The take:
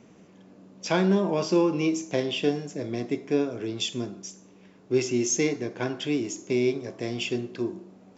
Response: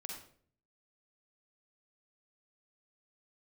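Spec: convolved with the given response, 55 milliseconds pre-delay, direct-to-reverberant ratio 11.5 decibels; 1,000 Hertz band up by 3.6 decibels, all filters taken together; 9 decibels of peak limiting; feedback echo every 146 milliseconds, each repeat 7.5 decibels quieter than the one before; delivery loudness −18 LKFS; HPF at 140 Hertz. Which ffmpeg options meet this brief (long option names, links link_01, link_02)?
-filter_complex "[0:a]highpass=140,equalizer=frequency=1000:width_type=o:gain=4.5,alimiter=limit=-18dB:level=0:latency=1,aecho=1:1:146|292|438|584|730:0.422|0.177|0.0744|0.0312|0.0131,asplit=2[link_01][link_02];[1:a]atrim=start_sample=2205,adelay=55[link_03];[link_02][link_03]afir=irnorm=-1:irlink=0,volume=-9dB[link_04];[link_01][link_04]amix=inputs=2:normalize=0,volume=10.5dB"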